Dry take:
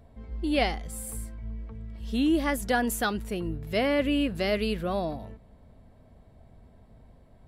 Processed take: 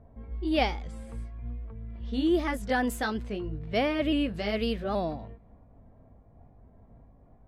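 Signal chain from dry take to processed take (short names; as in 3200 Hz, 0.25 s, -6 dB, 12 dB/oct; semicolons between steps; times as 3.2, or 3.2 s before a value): repeated pitch sweeps +1.5 st, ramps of 0.825 s; low-pass opened by the level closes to 1200 Hz, open at -25.5 dBFS; high shelf 8600 Hz -12 dB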